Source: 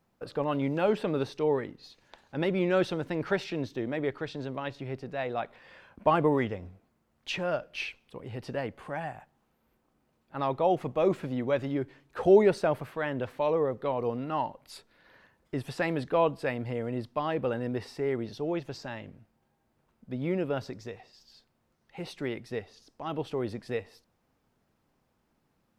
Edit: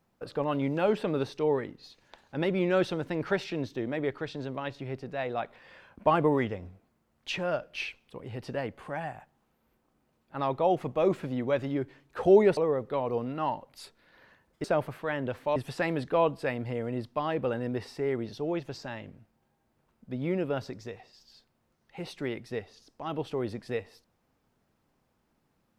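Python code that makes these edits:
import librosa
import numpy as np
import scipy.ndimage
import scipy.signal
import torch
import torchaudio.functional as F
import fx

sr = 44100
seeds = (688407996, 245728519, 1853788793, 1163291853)

y = fx.edit(x, sr, fx.move(start_s=12.57, length_s=0.92, to_s=15.56), tone=tone)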